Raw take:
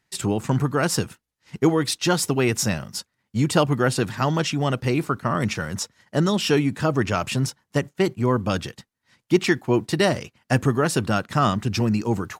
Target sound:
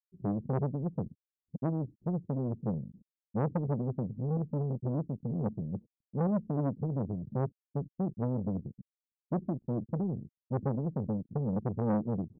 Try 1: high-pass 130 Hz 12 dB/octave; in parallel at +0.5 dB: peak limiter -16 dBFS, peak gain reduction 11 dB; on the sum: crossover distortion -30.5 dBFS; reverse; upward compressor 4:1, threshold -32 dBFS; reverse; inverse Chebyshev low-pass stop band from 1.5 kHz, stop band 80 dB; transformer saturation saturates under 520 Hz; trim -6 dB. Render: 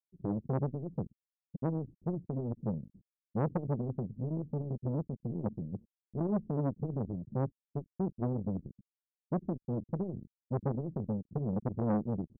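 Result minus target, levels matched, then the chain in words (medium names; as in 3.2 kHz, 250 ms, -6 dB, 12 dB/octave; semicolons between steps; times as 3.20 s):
crossover distortion: distortion +10 dB
high-pass 130 Hz 12 dB/octave; in parallel at +0.5 dB: peak limiter -16 dBFS, peak gain reduction 11 dB; on the sum: crossover distortion -41 dBFS; reverse; upward compressor 4:1, threshold -32 dBFS; reverse; inverse Chebyshev low-pass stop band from 1.5 kHz, stop band 80 dB; transformer saturation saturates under 520 Hz; trim -6 dB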